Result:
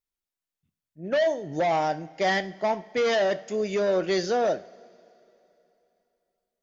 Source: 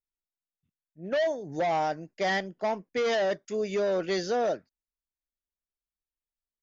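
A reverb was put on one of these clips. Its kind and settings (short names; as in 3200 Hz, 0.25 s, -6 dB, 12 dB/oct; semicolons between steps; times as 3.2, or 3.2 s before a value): two-slope reverb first 0.43 s, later 3.1 s, from -18 dB, DRR 12 dB; gain +3 dB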